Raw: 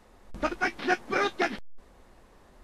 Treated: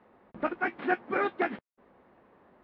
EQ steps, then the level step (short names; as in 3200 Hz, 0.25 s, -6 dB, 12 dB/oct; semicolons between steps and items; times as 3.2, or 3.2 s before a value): BPF 160–2700 Hz; air absorption 310 m; 0.0 dB